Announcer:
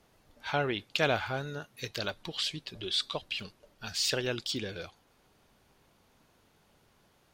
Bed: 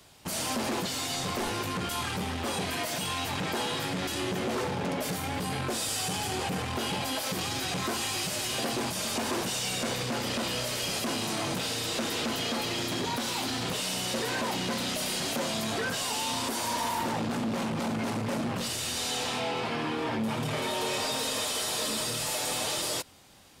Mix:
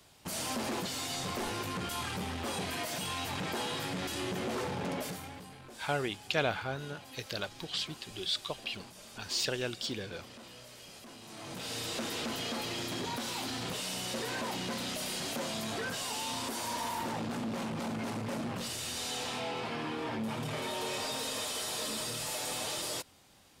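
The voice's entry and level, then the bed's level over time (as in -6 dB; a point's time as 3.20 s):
5.35 s, -2.5 dB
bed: 4.99 s -4.5 dB
5.56 s -19.5 dB
11.21 s -19.5 dB
11.76 s -5.5 dB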